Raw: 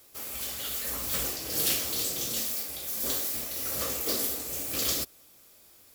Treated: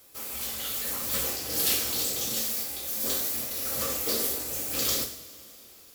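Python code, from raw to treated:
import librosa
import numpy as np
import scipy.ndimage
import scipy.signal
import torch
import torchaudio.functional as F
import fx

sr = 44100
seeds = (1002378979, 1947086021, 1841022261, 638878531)

y = fx.rev_double_slope(x, sr, seeds[0], early_s=0.6, late_s=4.0, knee_db=-18, drr_db=3.5)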